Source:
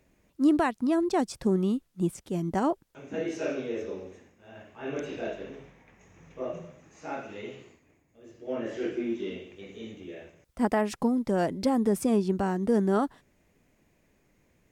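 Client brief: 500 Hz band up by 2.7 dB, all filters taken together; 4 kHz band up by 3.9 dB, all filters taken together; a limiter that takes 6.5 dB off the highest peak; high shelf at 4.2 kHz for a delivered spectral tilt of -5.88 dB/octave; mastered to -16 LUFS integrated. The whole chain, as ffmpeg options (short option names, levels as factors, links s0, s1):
-af "equalizer=f=500:t=o:g=3.5,equalizer=f=4000:t=o:g=7.5,highshelf=f=4200:g=-4,volume=5.01,alimiter=limit=0.668:level=0:latency=1"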